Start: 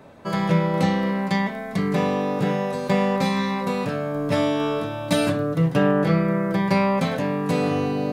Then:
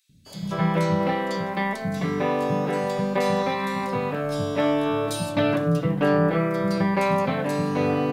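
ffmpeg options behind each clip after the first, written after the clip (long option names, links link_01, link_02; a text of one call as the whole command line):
ffmpeg -i in.wav -filter_complex "[0:a]acrossover=split=200|3600[link_01][link_02][link_03];[link_01]adelay=90[link_04];[link_02]adelay=260[link_05];[link_04][link_05][link_03]amix=inputs=3:normalize=0" out.wav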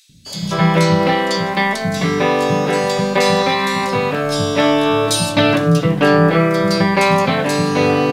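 ffmpeg -i in.wav -filter_complex "[0:a]equalizer=frequency=5200:width=0.51:gain=9,asplit=2[link_01][link_02];[link_02]adelay=18,volume=-13dB[link_03];[link_01][link_03]amix=inputs=2:normalize=0,areverse,acompressor=mode=upward:threshold=-42dB:ratio=2.5,areverse,volume=7.5dB" out.wav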